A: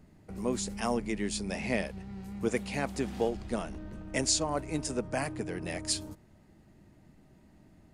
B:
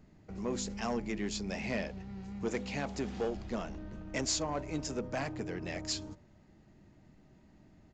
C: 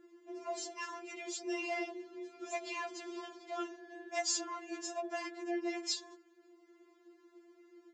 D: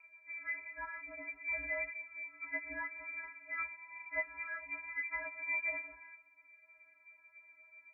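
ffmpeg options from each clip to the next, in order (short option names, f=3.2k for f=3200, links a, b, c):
-af "bandreject=f=83.54:t=h:w=4,bandreject=f=167.08:t=h:w=4,bandreject=f=250.62:t=h:w=4,bandreject=f=334.16:t=h:w=4,bandreject=f=417.7:t=h:w=4,bandreject=f=501.24:t=h:w=4,bandreject=f=584.78:t=h:w=4,bandreject=f=668.32:t=h:w=4,bandreject=f=751.86:t=h:w=4,bandreject=f=835.4:t=h:w=4,bandreject=f=918.94:t=h:w=4,bandreject=f=1.00248k:t=h:w=4,aresample=16000,asoftclip=type=tanh:threshold=-24.5dB,aresample=44100,volume=-1.5dB"
-af "afreqshift=170,afftfilt=real='re*4*eq(mod(b,16),0)':imag='im*4*eq(mod(b,16),0)':win_size=2048:overlap=0.75,volume=1dB"
-af "lowpass=f=2.3k:t=q:w=0.5098,lowpass=f=2.3k:t=q:w=0.6013,lowpass=f=2.3k:t=q:w=0.9,lowpass=f=2.3k:t=q:w=2.563,afreqshift=-2700"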